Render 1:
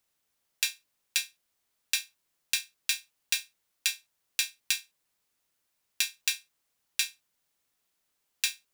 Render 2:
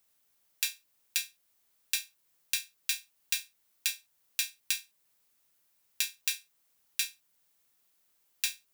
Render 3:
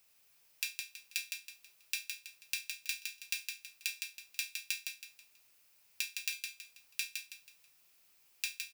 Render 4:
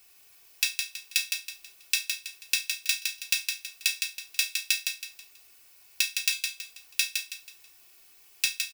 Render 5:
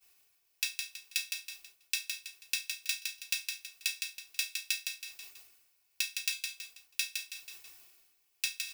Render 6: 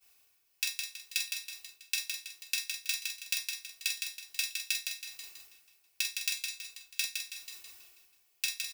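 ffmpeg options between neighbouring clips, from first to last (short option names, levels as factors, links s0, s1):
-af "highshelf=f=11000:g=8.5,alimiter=limit=0.473:level=0:latency=1:release=358,volume=1.19"
-filter_complex "[0:a]equalizer=f=250:t=o:w=0.33:g=-7,equalizer=f=2500:t=o:w=0.33:g=9,equalizer=f=5000:t=o:w=0.33:g=5,acompressor=threshold=0.00794:ratio=2.5,asplit=2[s0][s1];[s1]aecho=0:1:162|324|486|648:0.562|0.197|0.0689|0.0241[s2];[s0][s2]amix=inputs=2:normalize=0,volume=1.33"
-af "aecho=1:1:2.7:0.83,volume=2.66"
-af "agate=range=0.0224:threshold=0.00398:ratio=3:detection=peak,areverse,acompressor=mode=upward:threshold=0.0251:ratio=2.5,areverse,volume=0.447"
-af "aecho=1:1:45|487:0.531|0.133"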